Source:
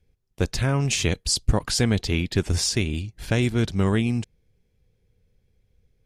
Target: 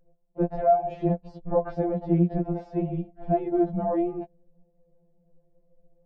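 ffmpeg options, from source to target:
ffmpeg -i in.wav -af "alimiter=limit=-15dB:level=0:latency=1:release=112,lowpass=frequency=670:width_type=q:width=4.9,aemphasis=mode=reproduction:type=75kf,afftfilt=real='re*2.83*eq(mod(b,8),0)':imag='im*2.83*eq(mod(b,8),0)':win_size=2048:overlap=0.75,volume=5.5dB" out.wav

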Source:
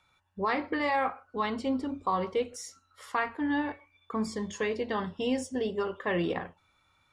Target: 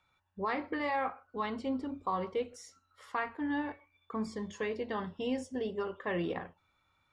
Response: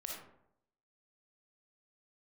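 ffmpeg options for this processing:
-af "highshelf=frequency=5900:gain=-9,volume=-4.5dB"

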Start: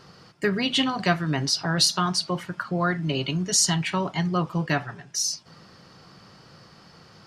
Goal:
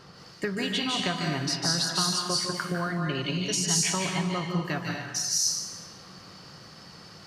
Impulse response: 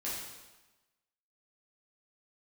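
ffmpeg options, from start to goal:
-filter_complex "[0:a]acompressor=threshold=-27dB:ratio=6,asplit=2[link_01][link_02];[1:a]atrim=start_sample=2205,highshelf=frequency=2800:gain=11,adelay=149[link_03];[link_02][link_03]afir=irnorm=-1:irlink=0,volume=-6.5dB[link_04];[link_01][link_04]amix=inputs=2:normalize=0"

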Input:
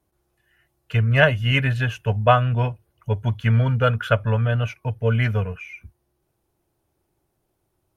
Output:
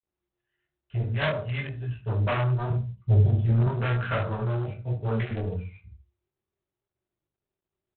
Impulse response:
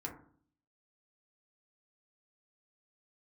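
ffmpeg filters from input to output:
-filter_complex "[0:a]asettb=1/sr,asplit=3[link_01][link_02][link_03];[link_01]atrim=end=1.064[link_04];[link_02]atrim=start=1.06:end=1.91,asetpts=PTS-STARTPTS,afade=type=in:duration=0.004:curve=qsin,afade=type=out:start_time=0.846:duration=0.004:curve=qsin,agate=range=-9dB:threshold=-14dB:ratio=16:detection=peak[link_05];[link_03]atrim=start=1.906[link_06];[link_04][link_05]acrossfade=duration=0.004:curve1=hsin:curve2=qsin[link_07];[link_07][link_06]acrossfade=duration=0.004:curve1=qsin:curve2=hsin,asettb=1/sr,asplit=3[link_08][link_09][link_10];[link_08]atrim=end=4.844[link_11];[link_09]atrim=start=4.84:end=5.26,asetpts=PTS-STARTPTS,afade=type=in:duration=0.004:curve=qsin,afade=type=out:start_time=0.416:duration=0.004:curve=qsin,aeval=exprs='sgn(val(0))*max(abs(val(0))-0.0075,0)':channel_layout=same[link_12];[link_10]atrim=start=5.256[link_13];[link_11][link_12]acrossfade=duration=0.004:curve1=hsin:curve2=qsin[link_14];[link_14][link_13]acrossfade=duration=0.004:curve1=qsin:curve2=hsin[link_15];[1:a]atrim=start_sample=2205,asetrate=57330,aresample=44100[link_16];[link_15][link_16]afir=irnorm=-1:irlink=0,acrossover=split=2500[link_17][link_18];[link_18]acompressor=threshold=-45dB:ratio=4:attack=1:release=60[link_19];[link_17][link_19]amix=inputs=2:normalize=0,volume=24dB,asoftclip=hard,volume=-24dB,highshelf=frequency=2900:gain=12,afwtdn=0.0251,asettb=1/sr,asplit=3[link_20][link_21][link_22];[link_20]atrim=end=2.704[link_23];[link_21]atrim=start=2.7:end=3.67,asetpts=PTS-STARTPTS,afade=type=in:duration=0.004:curve=qsin,afade=type=out:start_time=0.966:duration=0.004:curve=qsin,equalizer=frequency=77:width_type=o:width=2.6:gain=10.5[link_24];[link_22]atrim=start=3.666[link_25];[link_23][link_24]acrossfade=duration=0.004:curve1=hsin:curve2=qsin[link_26];[link_26][link_25]acrossfade=duration=0.004:curve1=qsin:curve2=hsin,asplit=2[link_27][link_28];[link_28]adelay=79,lowpass=frequency=1100:poles=1,volume=-13dB,asplit=2[link_29][link_30];[link_30]adelay=79,lowpass=frequency=1100:poles=1,volume=0.18[link_31];[link_27][link_29][link_31]amix=inputs=3:normalize=0,flanger=delay=16:depth=7.5:speed=1,volume=2dB" -ar 8000 -c:a adpcm_ima_wav

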